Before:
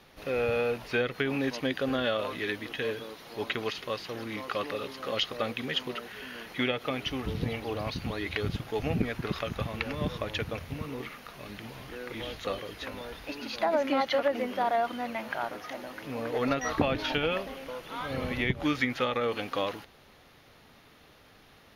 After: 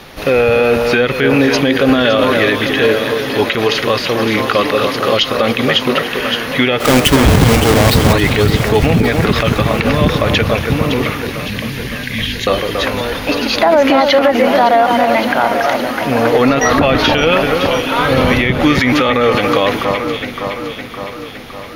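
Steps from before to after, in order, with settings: 6.80–8.13 s: square wave that keeps the level; 11.23–12.47 s: brick-wall FIR band-stop 280–1500 Hz; echo whose repeats swap between lows and highs 281 ms, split 2.1 kHz, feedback 76%, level -8 dB; loudness maximiser +22 dB; trim -1 dB

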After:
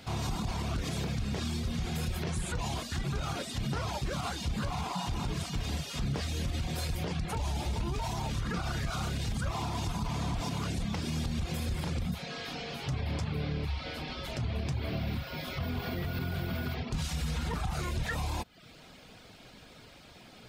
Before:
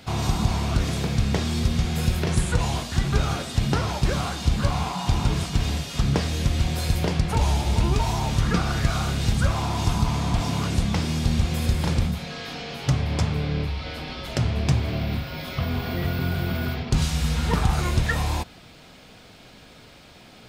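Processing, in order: reverb removal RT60 0.53 s; peak limiter -21.5 dBFS, peak gain reduction 11.5 dB; trim -3.5 dB

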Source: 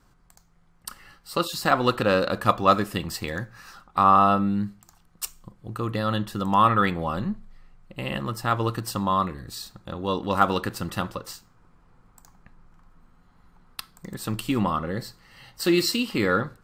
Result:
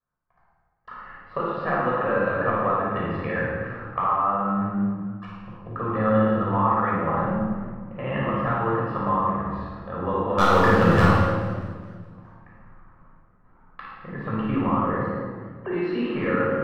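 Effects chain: 15.06–15.71 s: formants replaced by sine waves; gate -53 dBFS, range -27 dB; low-pass 1.8 kHz 24 dB/octave; bass shelf 220 Hz -11.5 dB; compression 6:1, threshold -29 dBFS, peak gain reduction 15 dB; 10.38–11.05 s: waveshaping leveller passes 3; flutter echo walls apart 9.5 m, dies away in 0.66 s; reverberation RT60 1.5 s, pre-delay 13 ms, DRR -4.5 dB; modulated delay 210 ms, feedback 51%, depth 205 cents, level -18 dB

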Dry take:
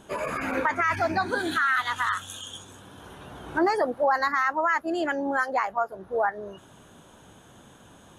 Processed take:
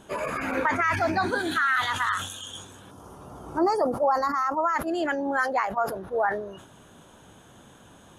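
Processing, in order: time-frequency box 2.91–4.75 s, 1.4–4.4 kHz -12 dB; decay stretcher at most 73 dB/s

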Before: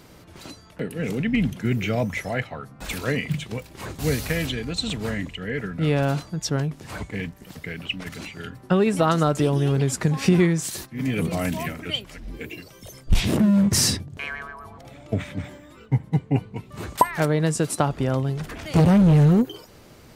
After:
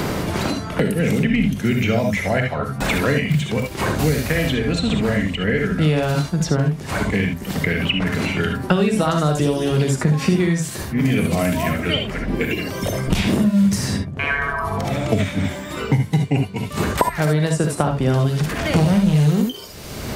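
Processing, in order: gated-style reverb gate 90 ms rising, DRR 3.5 dB; three bands compressed up and down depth 100%; trim +2 dB

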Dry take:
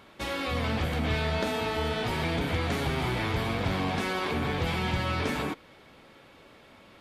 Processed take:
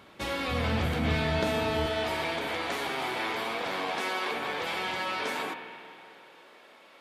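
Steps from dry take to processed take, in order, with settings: high-pass 56 Hz 12 dB/octave, from 1.86 s 440 Hz; spring tank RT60 2.8 s, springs 45/49 ms, chirp 70 ms, DRR 7 dB

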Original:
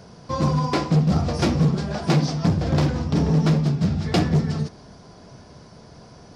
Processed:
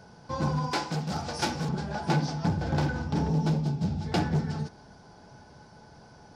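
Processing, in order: 3.28–4.12 s: peaking EQ 1.6 kHz -8 dB 1.2 oct; small resonant body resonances 850/1500 Hz, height 17 dB, ringing for 95 ms; 0.71–1.69 s: tilt EQ +2.5 dB/octave; trim -7.5 dB

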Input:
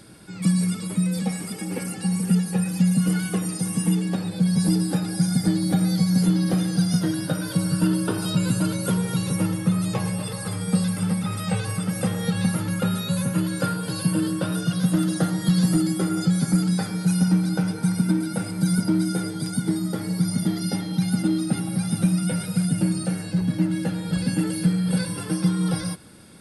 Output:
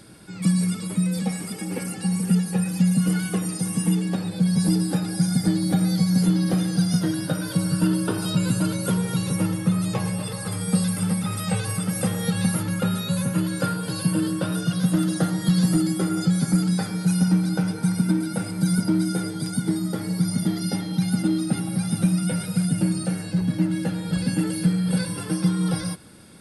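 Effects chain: 10.52–12.63 s: treble shelf 7.6 kHz +6.5 dB

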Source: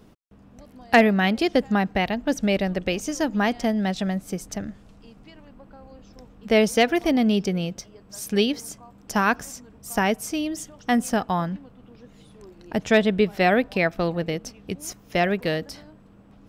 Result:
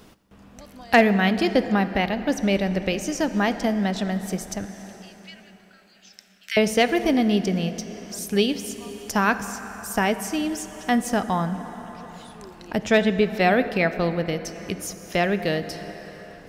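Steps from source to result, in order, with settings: 4.65–6.57 s: steep high-pass 1.5 kHz 48 dB/octave; plate-style reverb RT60 3.7 s, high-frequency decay 0.55×, DRR 10.5 dB; tape noise reduction on one side only encoder only

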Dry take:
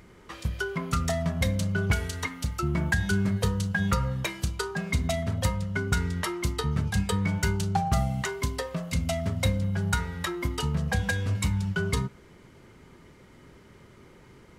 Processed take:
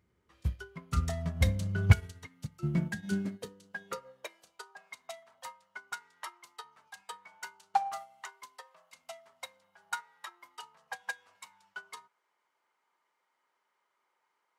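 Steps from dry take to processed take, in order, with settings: high-pass sweep 70 Hz -> 890 Hz, 1.63–4.94 s; in parallel at -8.5 dB: saturation -23.5 dBFS, distortion -9 dB; 2.12–3.65 s: on the sum: dynamic bell 1.1 kHz, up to -5 dB, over -41 dBFS, Q 1.6; upward expansion 2.5:1, over -31 dBFS

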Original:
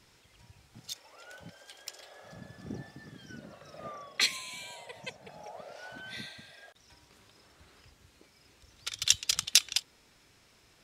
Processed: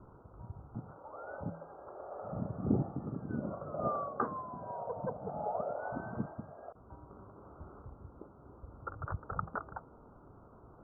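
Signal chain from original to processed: local Wiener filter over 15 samples; steep low-pass 1.4 kHz 96 dB/octave; de-hum 164.3 Hz, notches 4; trim +11 dB

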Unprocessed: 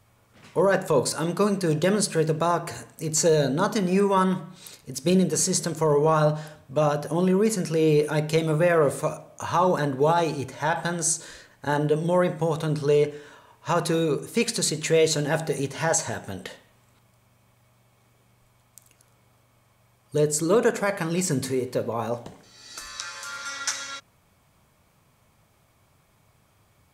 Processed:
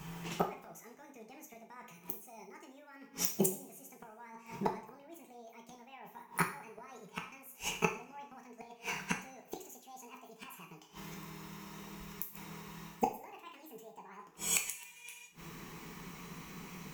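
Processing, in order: gliding tape speed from 140% -> 178%; dynamic bell 2 kHz, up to +3 dB, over -40 dBFS, Q 1.7; reverse; compression 16:1, threshold -27 dBFS, peak gain reduction 13 dB; reverse; inverted gate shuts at -26 dBFS, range -34 dB; rippled EQ curve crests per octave 0.74, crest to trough 8 dB; two-slope reverb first 0.44 s, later 2.3 s, from -27 dB, DRR 2.5 dB; trim +10.5 dB

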